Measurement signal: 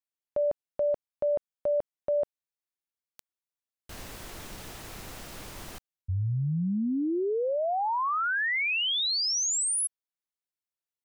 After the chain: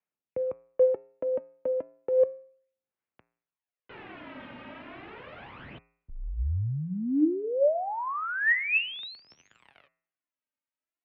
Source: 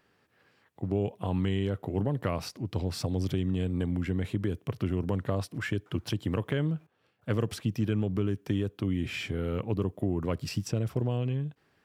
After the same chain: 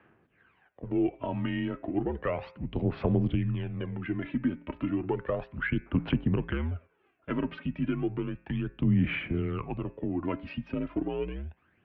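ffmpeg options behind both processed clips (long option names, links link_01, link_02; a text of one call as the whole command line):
ffmpeg -i in.wav -af "aphaser=in_gain=1:out_gain=1:delay=3.1:decay=0.63:speed=0.33:type=sinusoidal,bandreject=frequency=119.8:width_type=h:width=4,bandreject=frequency=239.6:width_type=h:width=4,bandreject=frequency=359.4:width_type=h:width=4,bandreject=frequency=479.2:width_type=h:width=4,bandreject=frequency=599:width_type=h:width=4,bandreject=frequency=718.8:width_type=h:width=4,bandreject=frequency=838.6:width_type=h:width=4,bandreject=frequency=958.4:width_type=h:width=4,bandreject=frequency=1078.2:width_type=h:width=4,bandreject=frequency=1198:width_type=h:width=4,bandreject=frequency=1317.8:width_type=h:width=4,bandreject=frequency=1437.6:width_type=h:width=4,bandreject=frequency=1557.4:width_type=h:width=4,bandreject=frequency=1677.2:width_type=h:width=4,bandreject=frequency=1797:width_type=h:width=4,bandreject=frequency=1916.8:width_type=h:width=4,bandreject=frequency=2036.6:width_type=h:width=4,bandreject=frequency=2156.4:width_type=h:width=4,bandreject=frequency=2276.2:width_type=h:width=4,bandreject=frequency=2396:width_type=h:width=4,bandreject=frequency=2515.8:width_type=h:width=4,bandreject=frequency=2635.6:width_type=h:width=4,bandreject=frequency=2755.4:width_type=h:width=4,highpass=frequency=160:width_type=q:width=0.5412,highpass=frequency=160:width_type=q:width=1.307,lowpass=frequency=2900:width_type=q:width=0.5176,lowpass=frequency=2900:width_type=q:width=0.7071,lowpass=frequency=2900:width_type=q:width=1.932,afreqshift=-71" out.wav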